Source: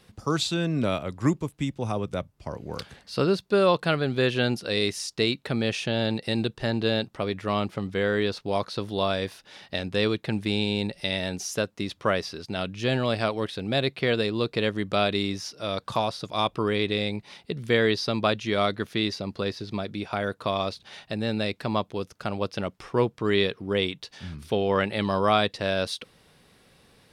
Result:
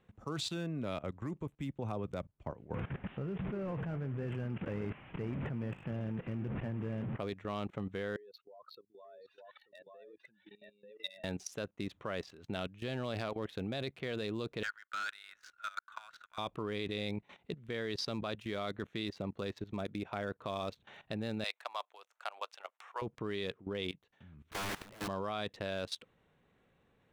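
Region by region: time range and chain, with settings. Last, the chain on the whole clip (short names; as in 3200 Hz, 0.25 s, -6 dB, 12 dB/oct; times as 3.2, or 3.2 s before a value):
2.74–7.18 delta modulation 16 kbps, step -27.5 dBFS + bell 130 Hz +12.5 dB 2.2 oct + flange 1.3 Hz, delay 2.8 ms, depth 8.3 ms, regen -79%
8.16–11.24 spectral contrast raised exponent 2.9 + HPF 1200 Hz + echo 0.887 s -7 dB
14.63–16.38 ladder high-pass 1400 Hz, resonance 85% + sample leveller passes 2
21.44–23.02 HPF 740 Hz 24 dB/oct + high shelf 7600 Hz +9.5 dB
23.95–25.08 wrapped overs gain 26.5 dB + high shelf 5400 Hz -5 dB + upward expander, over -50 dBFS
whole clip: Wiener smoothing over 9 samples; level quantiser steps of 17 dB; gain -3.5 dB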